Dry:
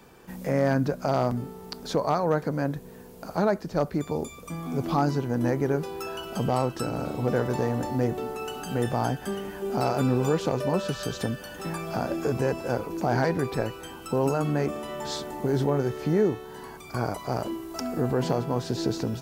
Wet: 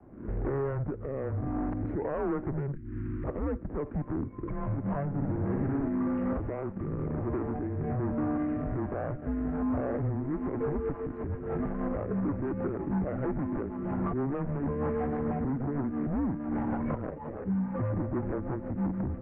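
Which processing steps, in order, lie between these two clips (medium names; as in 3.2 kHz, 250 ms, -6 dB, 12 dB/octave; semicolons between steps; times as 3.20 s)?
median filter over 25 samples; recorder AGC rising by 64 dB/s; high-pass 140 Hz 6 dB/octave; tilt shelf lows +3.5 dB, about 1.3 kHz; peak limiter -16 dBFS, peak gain reduction 6.5 dB; saturation -19 dBFS, distortion -18 dB; rotary cabinet horn 1.2 Hz, later 6.3 Hz, at 10.45 s; hard clipper -25.5 dBFS, distortion -15 dB; 2.75–3.24 s: Butterworth band-stop 810 Hz, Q 0.56; 5.08–5.88 s: flutter echo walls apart 10.3 m, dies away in 1.2 s; mistuned SSB -140 Hz 190–2100 Hz; 17.10–17.77 s: three-phase chorus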